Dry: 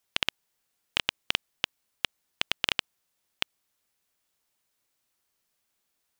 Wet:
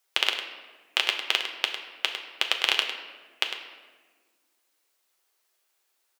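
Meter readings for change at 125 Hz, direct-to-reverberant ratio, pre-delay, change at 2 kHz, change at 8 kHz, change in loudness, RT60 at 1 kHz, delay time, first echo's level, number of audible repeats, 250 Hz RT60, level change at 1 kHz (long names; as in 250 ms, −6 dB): below −25 dB, 1.5 dB, 5 ms, +5.0 dB, +4.0 dB, +4.5 dB, 1.3 s, 103 ms, −10.0 dB, 1, 2.3 s, +5.0 dB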